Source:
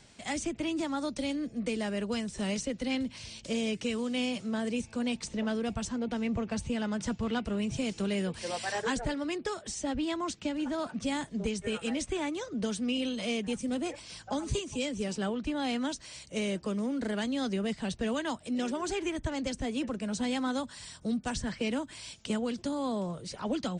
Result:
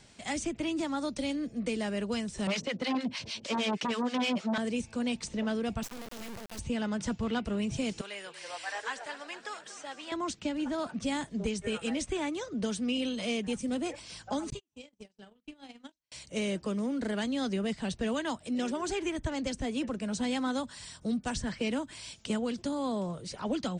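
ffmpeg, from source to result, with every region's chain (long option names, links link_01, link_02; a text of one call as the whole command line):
ffmpeg -i in.wav -filter_complex "[0:a]asettb=1/sr,asplit=3[link_01][link_02][link_03];[link_01]atrim=end=2.474[link_04];[link_02]atrim=start=2.47:end=4.58,asetpts=PTS-STARTPTS,afade=type=in:duration=0.004:curve=qsin,afade=type=out:start_time=2.106:duration=0.004:curve=qsin,acrossover=split=670[link_05][link_06];[link_05]aeval=exprs='val(0)*(1-1/2+1/2*cos(2*PI*6.4*n/s))':channel_layout=same[link_07];[link_06]aeval=exprs='val(0)*(1-1/2-1/2*cos(2*PI*6.4*n/s))':channel_layout=same[link_08];[link_07][link_08]amix=inputs=2:normalize=0,aeval=exprs='0.0562*sin(PI/2*2.51*val(0)/0.0562)':channel_layout=same,highpass=180,lowpass=5200[link_09];[link_03]atrim=start=4.576[link_10];[link_04][link_09]acrossfade=duration=0.004:curve1=hsin:curve2=qsin[link_11];[link_11][link_10]acrossfade=duration=0.004:curve1=qsin:curve2=hsin,asettb=1/sr,asplit=3[link_12][link_13][link_14];[link_12]atrim=end=5.834[link_15];[link_13]atrim=start=5.83:end=6.59,asetpts=PTS-STARTPTS,afade=type=in:duration=0.004:curve=qsin,afade=type=out:start_time=0.756:duration=0.004:curve=qsin,lowshelf=frequency=160:gain=-12,acrossover=split=190|3000[link_16][link_17][link_18];[link_17]acompressor=threshold=-41dB:ratio=10:attack=3.2:release=140:knee=2.83:detection=peak[link_19];[link_16][link_19][link_18]amix=inputs=3:normalize=0,acrusher=bits=4:dc=4:mix=0:aa=0.000001[link_20];[link_14]atrim=start=6.586[link_21];[link_15][link_20]acrossfade=duration=0.004:curve1=hsin:curve2=qsin[link_22];[link_22][link_21]acrossfade=duration=0.004:curve1=qsin:curve2=hsin,asettb=1/sr,asplit=3[link_23][link_24][link_25];[link_23]atrim=end=8.014[link_26];[link_24]atrim=start=8.01:end=10.12,asetpts=PTS-STARTPTS,afade=type=in:duration=0.004:curve=qsin,afade=type=out:start_time=2.106:duration=0.004:curve=qsin,acrossover=split=2700[link_27][link_28];[link_28]acompressor=threshold=-46dB:ratio=4:attack=1:release=60[link_29];[link_27][link_29]amix=inputs=2:normalize=0,highpass=900,asplit=8[link_30][link_31][link_32][link_33][link_34][link_35][link_36][link_37];[link_31]adelay=235,afreqshift=-42,volume=-13dB[link_38];[link_32]adelay=470,afreqshift=-84,volume=-17dB[link_39];[link_33]adelay=705,afreqshift=-126,volume=-21dB[link_40];[link_34]adelay=940,afreqshift=-168,volume=-25dB[link_41];[link_35]adelay=1175,afreqshift=-210,volume=-29.1dB[link_42];[link_36]adelay=1410,afreqshift=-252,volume=-33.1dB[link_43];[link_37]adelay=1645,afreqshift=-294,volume=-37.1dB[link_44];[link_30][link_38][link_39][link_40][link_41][link_42][link_43][link_44]amix=inputs=8:normalize=0,atrim=end_sample=93051[link_45];[link_25]atrim=start=10.116[link_46];[link_26][link_45]acrossfade=duration=0.004:curve1=hsin:curve2=qsin[link_47];[link_47][link_46]acrossfade=duration=0.004:curve1=qsin:curve2=hsin,asettb=1/sr,asplit=3[link_48][link_49][link_50];[link_48]atrim=end=14.504[link_51];[link_49]atrim=start=14.5:end=16.12,asetpts=PTS-STARTPTS,afade=type=in:duration=0.004:curve=qsin,afade=type=out:start_time=1.616:duration=0.004:curve=qsin,asplit=2[link_52][link_53];[link_53]adelay=43,volume=-12dB[link_54];[link_52][link_54]amix=inputs=2:normalize=0,atrim=end_sample=71442,acrossover=split=87|2400|5200[link_55][link_56][link_57][link_58];[link_55]acompressor=threshold=-47dB:ratio=3[link_59];[link_56]acompressor=threshold=-38dB:ratio=3[link_60];[link_57]acompressor=threshold=-45dB:ratio=3[link_61];[link_58]acompressor=threshold=-58dB:ratio=3[link_62];[link_59][link_60][link_61][link_62]amix=inputs=4:normalize=0,agate=range=-45dB:threshold=-36dB:ratio=16:release=100:detection=peak[link_63];[link_50]atrim=start=16.116[link_64];[link_51][link_63]acrossfade=duration=0.004:curve1=hsin:curve2=qsin[link_65];[link_65][link_64]acrossfade=duration=0.004:curve1=qsin:curve2=hsin" out.wav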